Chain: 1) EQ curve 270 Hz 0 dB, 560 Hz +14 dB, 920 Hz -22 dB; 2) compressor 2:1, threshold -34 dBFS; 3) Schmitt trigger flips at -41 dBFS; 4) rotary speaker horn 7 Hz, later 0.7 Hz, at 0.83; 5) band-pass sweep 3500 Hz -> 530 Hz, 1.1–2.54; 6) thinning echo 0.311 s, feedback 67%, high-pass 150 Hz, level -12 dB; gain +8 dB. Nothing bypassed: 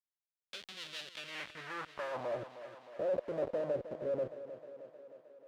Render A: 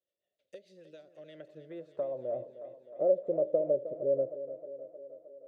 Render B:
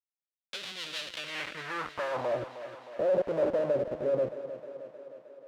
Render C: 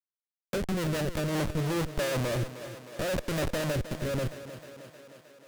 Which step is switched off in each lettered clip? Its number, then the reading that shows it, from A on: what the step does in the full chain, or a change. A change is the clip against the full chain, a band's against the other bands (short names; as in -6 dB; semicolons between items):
3, distortion 0 dB; 2, mean gain reduction 5.0 dB; 5, 125 Hz band +14.5 dB